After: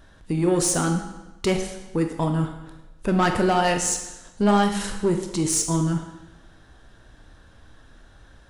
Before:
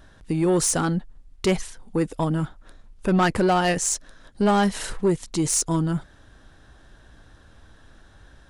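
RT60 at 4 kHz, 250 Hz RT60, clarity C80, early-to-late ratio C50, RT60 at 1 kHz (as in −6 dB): 0.95 s, 1.0 s, 9.0 dB, 7.5 dB, 1.0 s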